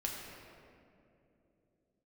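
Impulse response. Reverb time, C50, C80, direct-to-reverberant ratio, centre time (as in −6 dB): 2.9 s, 1.0 dB, 2.0 dB, −2.0 dB, 106 ms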